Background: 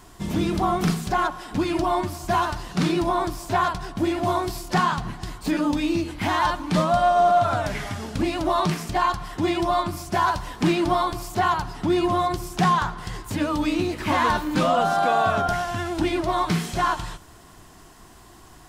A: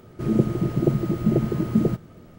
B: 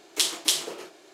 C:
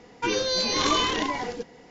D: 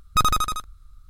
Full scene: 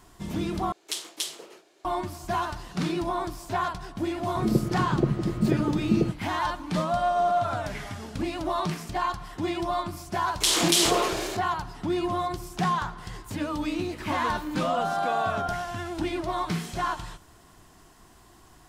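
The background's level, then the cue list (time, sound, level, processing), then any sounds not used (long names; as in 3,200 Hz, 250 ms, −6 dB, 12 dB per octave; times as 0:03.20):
background −6 dB
0:00.72: overwrite with B −8.5 dB
0:04.16: mix in A −3.5 dB + low-pass filter 5,300 Hz
0:10.24: mix in B −1.5 dB + level that may fall only so fast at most 23 dB per second
not used: C, D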